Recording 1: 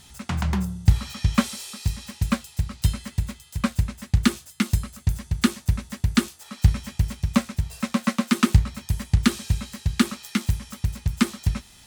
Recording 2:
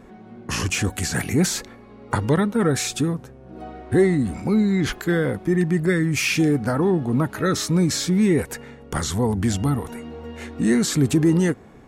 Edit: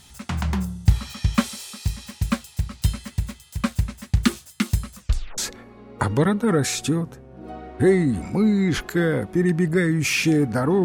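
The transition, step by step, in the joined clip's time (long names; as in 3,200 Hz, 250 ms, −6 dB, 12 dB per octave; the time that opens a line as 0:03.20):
recording 1
0:04.95: tape stop 0.43 s
0:05.38: continue with recording 2 from 0:01.50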